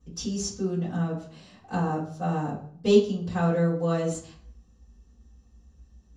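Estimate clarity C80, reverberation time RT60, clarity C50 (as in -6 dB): 10.5 dB, 0.55 s, 6.0 dB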